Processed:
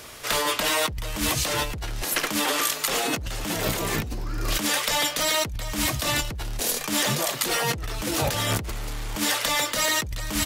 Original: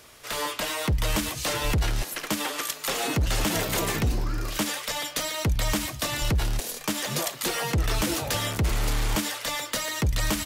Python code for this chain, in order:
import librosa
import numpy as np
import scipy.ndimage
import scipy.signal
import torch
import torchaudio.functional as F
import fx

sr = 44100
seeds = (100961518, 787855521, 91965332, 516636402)

y = fx.over_compress(x, sr, threshold_db=-31.0, ratio=-1.0)
y = y * librosa.db_to_amplitude(4.5)